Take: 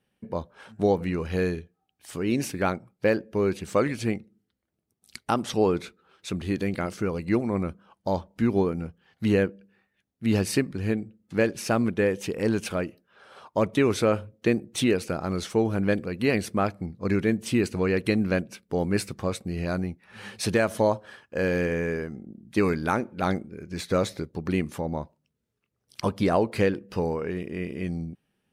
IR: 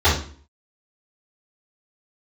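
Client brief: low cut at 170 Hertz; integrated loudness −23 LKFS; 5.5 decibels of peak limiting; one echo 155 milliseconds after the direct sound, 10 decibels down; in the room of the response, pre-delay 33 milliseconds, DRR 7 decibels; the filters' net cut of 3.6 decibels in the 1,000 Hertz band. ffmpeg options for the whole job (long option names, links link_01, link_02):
-filter_complex "[0:a]highpass=170,equalizer=frequency=1000:width_type=o:gain=-5,alimiter=limit=-14.5dB:level=0:latency=1,aecho=1:1:155:0.316,asplit=2[link_01][link_02];[1:a]atrim=start_sample=2205,adelay=33[link_03];[link_02][link_03]afir=irnorm=-1:irlink=0,volume=-28.5dB[link_04];[link_01][link_04]amix=inputs=2:normalize=0,volume=5dB"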